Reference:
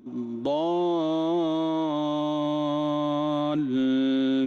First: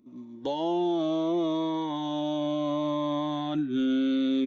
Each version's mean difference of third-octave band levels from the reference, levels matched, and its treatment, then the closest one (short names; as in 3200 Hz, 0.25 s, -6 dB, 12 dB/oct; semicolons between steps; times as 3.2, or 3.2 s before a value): 2.5 dB: spectral noise reduction 9 dB; low shelf 220 Hz -3.5 dB; downsampling 16000 Hz; cascading phaser falling 0.71 Hz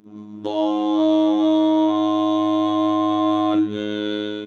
6.0 dB: low shelf 65 Hz -9.5 dB; AGC gain up to 8 dB; robotiser 105 Hz; doubler 41 ms -9.5 dB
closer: first